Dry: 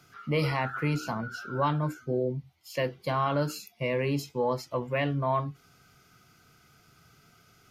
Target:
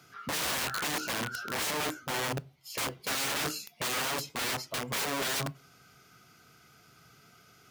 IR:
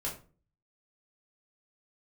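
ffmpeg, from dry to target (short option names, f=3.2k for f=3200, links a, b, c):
-filter_complex "[0:a]aeval=exprs='(mod(26.6*val(0)+1,2)-1)/26.6':c=same,highpass=f=140:p=1,asplit=2[a][b];[1:a]atrim=start_sample=2205[c];[b][c]afir=irnorm=-1:irlink=0,volume=-22dB[d];[a][d]amix=inputs=2:normalize=0,volume=1.5dB"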